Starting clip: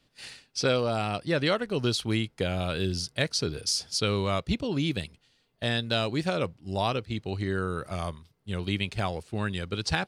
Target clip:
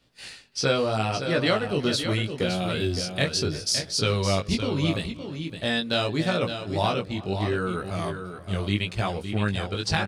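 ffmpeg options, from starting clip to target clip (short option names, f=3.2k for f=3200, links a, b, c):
-filter_complex "[0:a]asplit=2[a][b];[b]adelay=334,lowpass=f=2.4k:p=1,volume=-19dB,asplit=2[c][d];[d]adelay=334,lowpass=f=2.4k:p=1,volume=0.48,asplit=2[e][f];[f]adelay=334,lowpass=f=2.4k:p=1,volume=0.48,asplit=2[g][h];[h]adelay=334,lowpass=f=2.4k:p=1,volume=0.48[i];[c][e][g][i]amix=inputs=4:normalize=0[j];[a][j]amix=inputs=2:normalize=0,flanger=delay=16.5:depth=4.8:speed=0.77,asplit=2[k][l];[l]aecho=0:1:564:0.376[m];[k][m]amix=inputs=2:normalize=0,volume=5.5dB"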